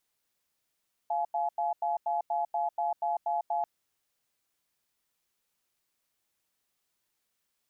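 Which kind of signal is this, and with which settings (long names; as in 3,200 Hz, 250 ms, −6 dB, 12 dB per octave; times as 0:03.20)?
tone pair in a cadence 695 Hz, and 848 Hz, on 0.15 s, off 0.09 s, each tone −29.5 dBFS 2.54 s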